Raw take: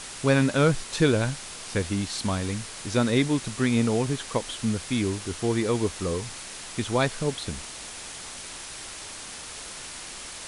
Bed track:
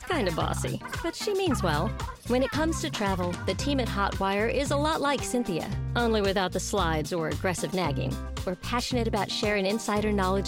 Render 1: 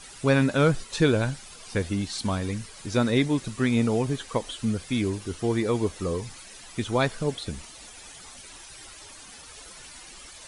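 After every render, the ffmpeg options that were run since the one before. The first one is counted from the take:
-af "afftdn=nr=12:nf=-40"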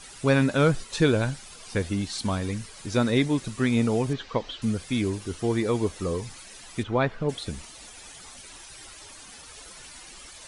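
-filter_complex "[0:a]asettb=1/sr,asplit=3[a][b][c];[a]atrim=end=4.134[d];[b]atrim=start=4.13:end=4.62,asetpts=PTS-STARTPTS,afade=t=in:d=0.004:c=qsin,afade=t=out:st=0.486:d=0.004:c=qsin,lowpass=f=5.1k:w=0.5412,lowpass=f=5.1k:w=1.3066[e];[c]atrim=start=4.616[f];[d][e]acrossfade=d=0.004:c1=hsin:c2=qsin[g];[g][f]acrossfade=d=0.004:c1=qsin:c2=hsin,asplit=3[h][i][j];[h]afade=t=out:st=6.82:d=0.02[k];[i]lowpass=2.5k,afade=t=in:st=6.82:d=0.02,afade=t=out:st=7.28:d=0.02[l];[j]afade=t=in:st=7.28:d=0.02[m];[k][l][m]amix=inputs=3:normalize=0"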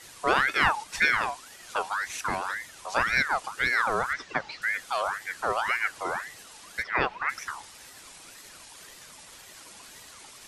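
-af "aeval=exprs='val(0)*sin(2*PI*1400*n/s+1400*0.4/1.9*sin(2*PI*1.9*n/s))':c=same"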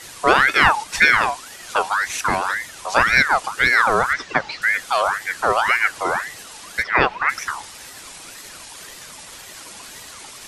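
-af "volume=9.5dB,alimiter=limit=-1dB:level=0:latency=1"

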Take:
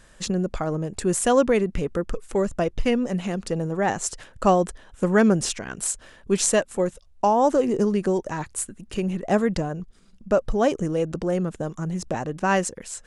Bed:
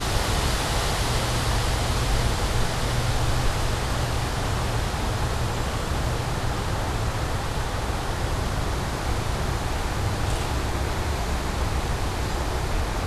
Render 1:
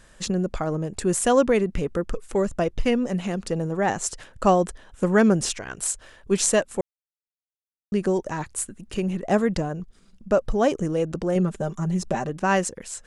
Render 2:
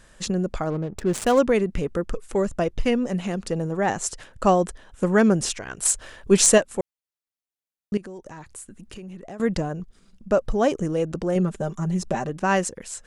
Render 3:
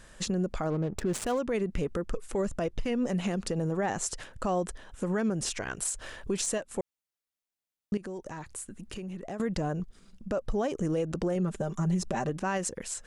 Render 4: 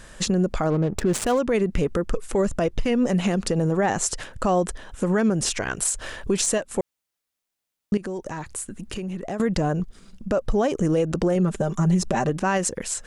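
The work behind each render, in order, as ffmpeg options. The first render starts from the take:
-filter_complex "[0:a]asettb=1/sr,asplit=3[a][b][c];[a]atrim=end=5.584[d];[b]atrim=start=5.58:end=6.31,asetpts=PTS-STARTPTS,afade=t=in:d=0.004:c=qsin,afade=t=out:st=0.726:d=0.004:c=qsin,equalizer=f=210:w=1.5:g=-7[e];[c]atrim=start=6.306[f];[d][e]acrossfade=d=0.004:c1=hsin:c2=qsin[g];[g][f]acrossfade=d=0.004:c1=qsin:c2=hsin,asettb=1/sr,asplit=3[h][i][j];[h]atrim=end=11.354[k];[i]atrim=start=11.35:end=12.29,asetpts=PTS-STARTPTS,afade=t=in:d=0.004:c=qsin,afade=t=out:st=0.936:d=0.004:c=qsin,aecho=1:1:5.1:0.65,atrim=end_sample=41454[l];[j]atrim=start=12.286[m];[k][l]acrossfade=d=0.004:c1=hsin:c2=qsin[n];[n][m]acrossfade=d=0.004:c1=qsin:c2=hsin,asplit=3[o][p][q];[o]atrim=end=6.81,asetpts=PTS-STARTPTS,afade=t=out:st=6.806:d=0.004:c=hsin[r];[p]atrim=start=6.81:end=7.92,asetpts=PTS-STARTPTS,volume=0[s];[q]atrim=start=7.92,asetpts=PTS-STARTPTS,afade=t=in:d=0.004:c=hsin[t];[r][s][t]concat=n=3:v=0:a=1"
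-filter_complex "[0:a]asettb=1/sr,asplit=3[a][b][c];[a]atrim=end=0.704[d];[b]atrim=start=0.7:end=1.39,asetpts=PTS-STARTPTS,afade=t=in:d=0.004:c=qsin,afade=t=out:st=0.686:d=0.004:c=qsin,adynamicsmooth=sensitivity=6:basefreq=580[e];[c]atrim=start=1.386[f];[d][e]acrossfade=d=0.004:c1=hsin:c2=qsin[g];[g][f]acrossfade=d=0.004:c1=qsin:c2=hsin,asettb=1/sr,asplit=3[h][i][j];[h]atrim=end=5.854[k];[i]atrim=start=5.85:end=6.58,asetpts=PTS-STARTPTS,afade=t=in:d=0.004:c=qsin,afade=t=out:st=0.726:d=0.004:c=qsin,acontrast=49[l];[j]atrim=start=6.576[m];[k][l]acrossfade=d=0.004:c1=hsin:c2=qsin[n];[n][m]acrossfade=d=0.004:c1=qsin:c2=hsin,asettb=1/sr,asplit=3[o][p][q];[o]atrim=end=7.974[r];[p]atrim=start=7.97:end=9.4,asetpts=PTS-STARTPTS,afade=t=in:d=0.004:c=qsin,afade=t=out:st=1.426:d=0.004:c=qsin,acompressor=threshold=-38dB:ratio=4:attack=3.2:release=140:knee=1:detection=peak[s];[q]atrim=start=9.396[t];[r][s]acrossfade=d=0.004:c1=hsin:c2=qsin[u];[u][t]acrossfade=d=0.004:c1=qsin:c2=hsin"
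-af "acompressor=threshold=-23dB:ratio=6,alimiter=limit=-21dB:level=0:latency=1:release=64"
-af "volume=8dB"

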